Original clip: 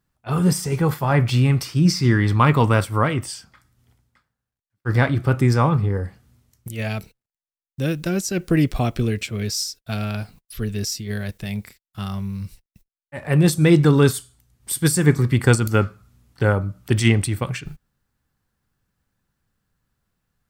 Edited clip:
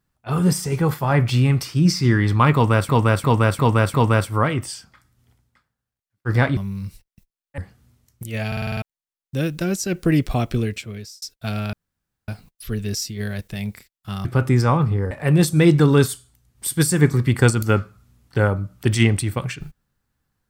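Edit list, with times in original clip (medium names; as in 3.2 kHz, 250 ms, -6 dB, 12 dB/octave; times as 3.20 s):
2.54–2.89 s: loop, 5 plays
5.17–6.03 s: swap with 12.15–13.16 s
6.92 s: stutter in place 0.05 s, 7 plays
9.03–9.67 s: fade out
10.18 s: insert room tone 0.55 s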